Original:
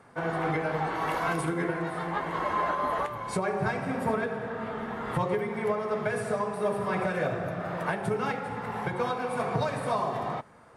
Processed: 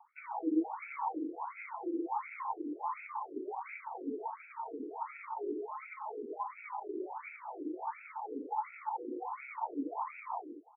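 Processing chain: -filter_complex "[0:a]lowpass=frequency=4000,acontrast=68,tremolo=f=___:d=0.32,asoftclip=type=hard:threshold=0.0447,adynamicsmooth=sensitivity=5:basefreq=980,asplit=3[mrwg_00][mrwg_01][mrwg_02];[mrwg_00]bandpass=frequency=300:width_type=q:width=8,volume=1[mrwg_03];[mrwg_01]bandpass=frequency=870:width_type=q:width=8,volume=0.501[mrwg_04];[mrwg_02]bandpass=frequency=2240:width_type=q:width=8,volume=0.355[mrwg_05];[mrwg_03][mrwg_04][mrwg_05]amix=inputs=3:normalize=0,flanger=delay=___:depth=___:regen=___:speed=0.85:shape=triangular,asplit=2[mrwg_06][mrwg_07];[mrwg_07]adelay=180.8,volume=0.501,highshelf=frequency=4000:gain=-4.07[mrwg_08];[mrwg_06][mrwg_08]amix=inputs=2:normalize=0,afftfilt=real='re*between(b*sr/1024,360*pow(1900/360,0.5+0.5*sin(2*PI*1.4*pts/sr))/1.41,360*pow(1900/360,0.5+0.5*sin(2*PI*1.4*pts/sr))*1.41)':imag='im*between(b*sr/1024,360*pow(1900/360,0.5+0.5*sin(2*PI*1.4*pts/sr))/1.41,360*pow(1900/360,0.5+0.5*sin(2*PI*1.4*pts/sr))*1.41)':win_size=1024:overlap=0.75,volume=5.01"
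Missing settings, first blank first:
12, 3.3, 6, 76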